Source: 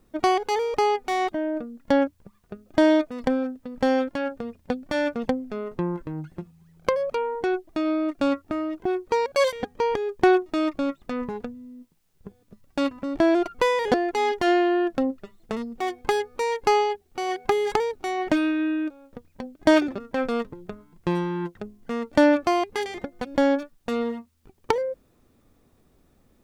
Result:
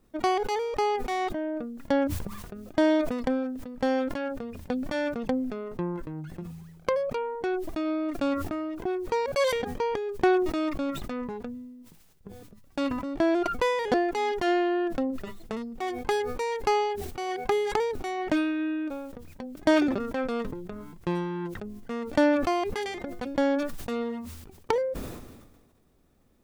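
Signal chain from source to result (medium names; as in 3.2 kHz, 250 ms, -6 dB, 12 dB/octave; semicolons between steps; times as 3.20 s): decay stretcher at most 41 dB/s; trim -4.5 dB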